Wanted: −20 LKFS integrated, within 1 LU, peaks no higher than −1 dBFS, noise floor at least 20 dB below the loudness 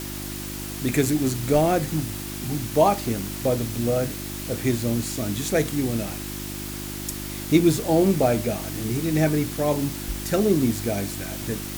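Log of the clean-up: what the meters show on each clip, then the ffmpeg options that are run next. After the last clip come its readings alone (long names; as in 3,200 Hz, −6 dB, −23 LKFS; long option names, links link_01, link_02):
mains hum 50 Hz; hum harmonics up to 350 Hz; level of the hum −33 dBFS; background noise floor −33 dBFS; target noise floor −44 dBFS; integrated loudness −24.0 LKFS; sample peak −5.5 dBFS; target loudness −20.0 LKFS
→ -af "bandreject=frequency=50:width_type=h:width=4,bandreject=frequency=100:width_type=h:width=4,bandreject=frequency=150:width_type=h:width=4,bandreject=frequency=200:width_type=h:width=4,bandreject=frequency=250:width_type=h:width=4,bandreject=frequency=300:width_type=h:width=4,bandreject=frequency=350:width_type=h:width=4"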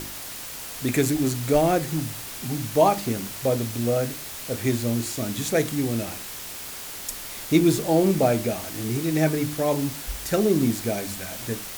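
mains hum none found; background noise floor −36 dBFS; target noise floor −45 dBFS
→ -af "afftdn=noise_reduction=9:noise_floor=-36"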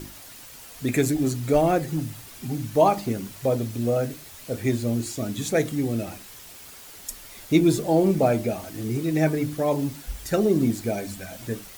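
background noise floor −44 dBFS; target noise floor −45 dBFS
→ -af "afftdn=noise_reduction=6:noise_floor=-44"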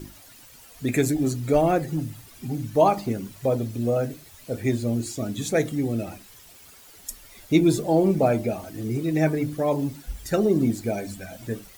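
background noise floor −49 dBFS; integrated loudness −24.5 LKFS; sample peak −6.0 dBFS; target loudness −20.0 LKFS
→ -af "volume=4.5dB"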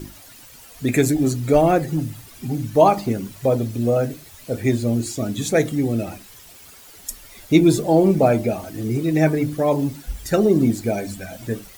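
integrated loudness −20.0 LKFS; sample peak −1.5 dBFS; background noise floor −45 dBFS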